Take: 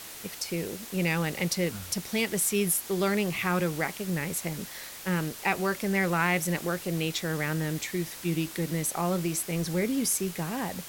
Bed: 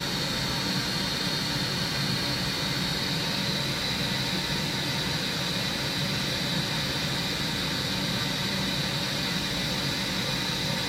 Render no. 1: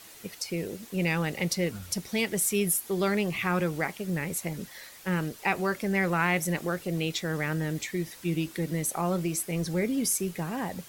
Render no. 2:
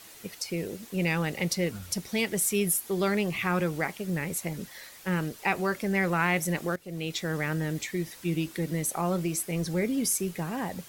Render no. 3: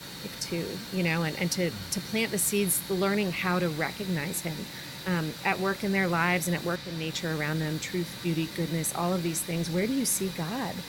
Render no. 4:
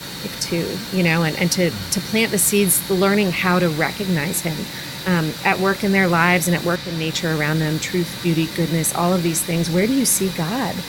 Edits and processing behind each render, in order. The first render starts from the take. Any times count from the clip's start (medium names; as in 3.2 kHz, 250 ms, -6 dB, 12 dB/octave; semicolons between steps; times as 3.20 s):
noise reduction 8 dB, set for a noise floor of -43 dBFS
6.76–7.23 s: fade in, from -16.5 dB
add bed -13 dB
trim +10 dB; peak limiter -3 dBFS, peak gain reduction 1 dB